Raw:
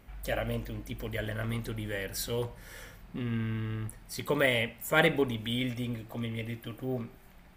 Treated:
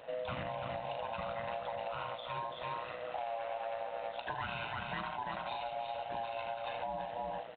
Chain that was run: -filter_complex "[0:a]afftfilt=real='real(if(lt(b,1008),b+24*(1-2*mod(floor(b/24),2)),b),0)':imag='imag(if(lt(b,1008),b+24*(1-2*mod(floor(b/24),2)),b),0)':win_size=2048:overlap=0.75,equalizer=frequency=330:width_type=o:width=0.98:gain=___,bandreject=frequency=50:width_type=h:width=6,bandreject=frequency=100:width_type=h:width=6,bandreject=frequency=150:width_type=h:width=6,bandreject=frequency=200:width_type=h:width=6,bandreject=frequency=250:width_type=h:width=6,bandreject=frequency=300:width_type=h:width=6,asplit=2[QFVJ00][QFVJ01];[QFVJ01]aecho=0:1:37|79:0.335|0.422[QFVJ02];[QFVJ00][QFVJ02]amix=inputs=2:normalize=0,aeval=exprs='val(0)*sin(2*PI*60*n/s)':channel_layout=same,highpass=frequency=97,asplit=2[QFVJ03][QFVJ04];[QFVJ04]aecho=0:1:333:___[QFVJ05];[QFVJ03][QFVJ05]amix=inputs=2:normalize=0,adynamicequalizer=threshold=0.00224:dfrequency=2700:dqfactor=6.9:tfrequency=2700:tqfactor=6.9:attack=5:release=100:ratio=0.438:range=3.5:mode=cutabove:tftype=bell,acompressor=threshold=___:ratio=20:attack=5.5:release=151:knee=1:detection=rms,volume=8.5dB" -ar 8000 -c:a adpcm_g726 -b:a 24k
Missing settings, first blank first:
-2.5, 0.398, -42dB